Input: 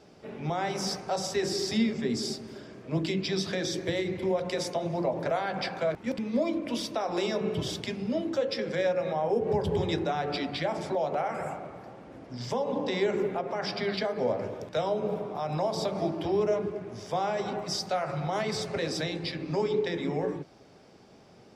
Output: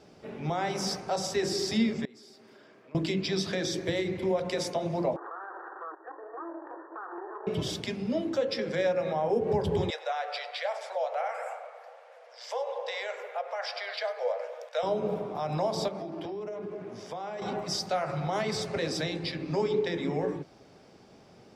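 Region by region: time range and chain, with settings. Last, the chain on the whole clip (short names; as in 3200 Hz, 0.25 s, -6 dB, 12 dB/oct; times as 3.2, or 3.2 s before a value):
2.05–2.95 HPF 1200 Hz 6 dB/oct + bell 7400 Hz -11.5 dB 2.4 oct + compressor, threshold -50 dBFS
5.16–7.47 minimum comb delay 0.85 ms + brick-wall FIR band-pass 310–1900 Hz + compressor 2.5:1, threshold -39 dBFS
9.9–14.83 rippled Chebyshev high-pass 470 Hz, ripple 3 dB + echo 99 ms -17.5 dB
15.88–17.42 HPF 170 Hz + high shelf 4700 Hz -5.5 dB + compressor 12:1, threshold -33 dBFS
whole clip: dry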